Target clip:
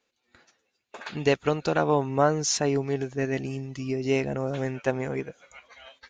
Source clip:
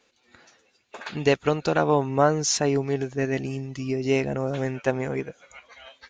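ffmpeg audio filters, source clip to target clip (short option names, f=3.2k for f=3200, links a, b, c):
-af "agate=range=-9dB:threshold=-53dB:ratio=16:detection=peak,volume=-2dB"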